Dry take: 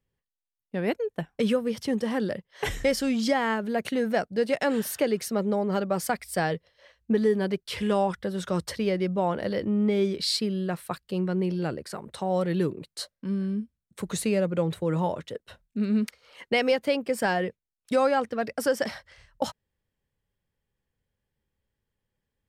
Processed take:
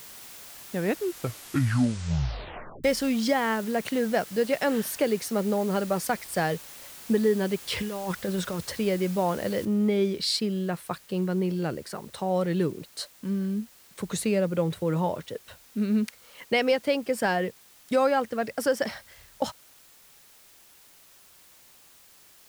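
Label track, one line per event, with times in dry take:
0.750000	0.750000	tape stop 2.09 s
7.620000	8.620000	compressor whose output falls as the input rises −30 dBFS
9.650000	9.650000	noise floor change −45 dB −55 dB

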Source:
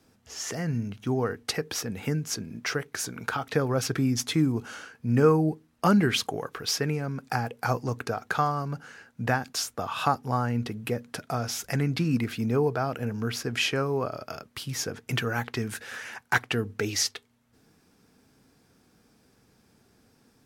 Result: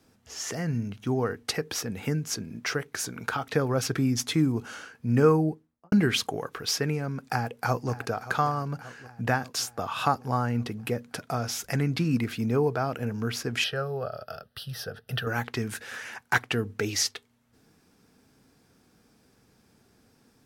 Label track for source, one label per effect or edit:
5.330000	5.920000	fade out and dull
7.230000	7.910000	delay throw 580 ms, feedback 65%, level −15.5 dB
13.640000	15.270000	phaser with its sweep stopped centre 1,500 Hz, stages 8

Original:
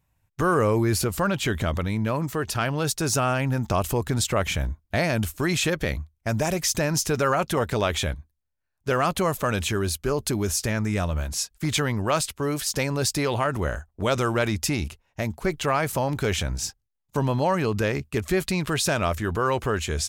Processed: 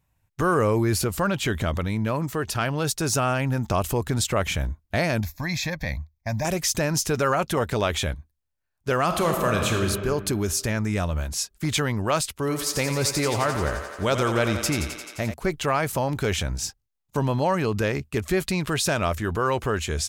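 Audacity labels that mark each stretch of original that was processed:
5.200000	6.450000	phaser with its sweep stopped centre 2,000 Hz, stages 8
9.040000	9.860000	thrown reverb, RT60 1.8 s, DRR 2 dB
12.300000	15.340000	feedback echo with a high-pass in the loop 87 ms, feedback 77%, high-pass 290 Hz, level −8 dB

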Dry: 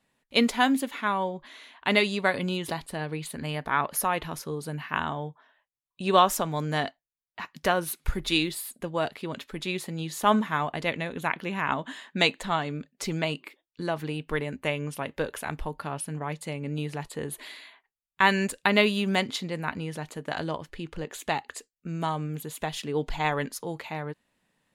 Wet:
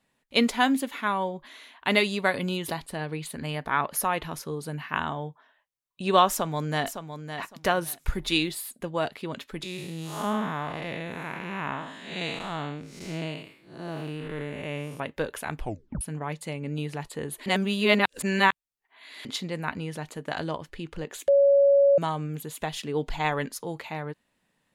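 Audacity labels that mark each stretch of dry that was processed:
0.910000	2.760000	parametric band 13,000 Hz +8 dB 0.48 octaves
6.300000	6.860000	delay throw 560 ms, feedback 20%, level −9 dB
9.630000	15.000000	spectrum smeared in time width 222 ms
15.600000	15.600000	tape stop 0.41 s
17.460000	19.250000	reverse
21.280000	21.980000	beep over 560 Hz −15 dBFS

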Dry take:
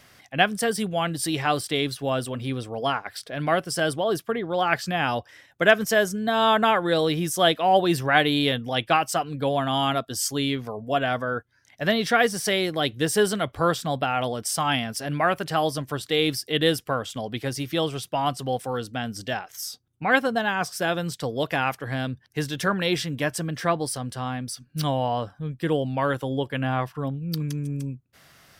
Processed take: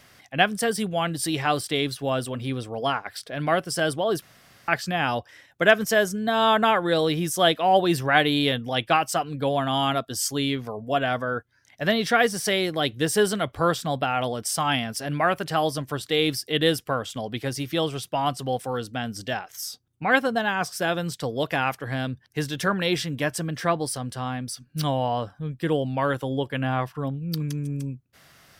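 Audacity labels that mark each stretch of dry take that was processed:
4.220000	4.680000	fill with room tone

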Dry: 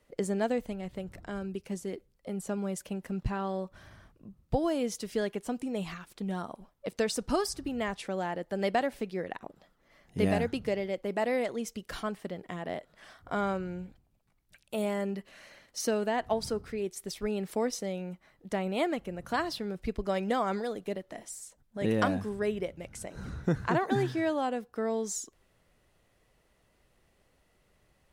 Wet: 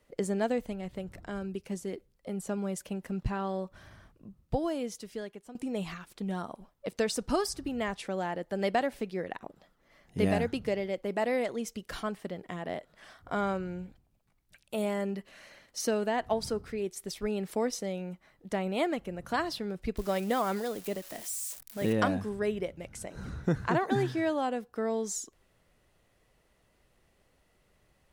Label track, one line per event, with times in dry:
4.280000	5.550000	fade out linear, to −15.5 dB
19.970000	21.930000	spike at every zero crossing of −34 dBFS

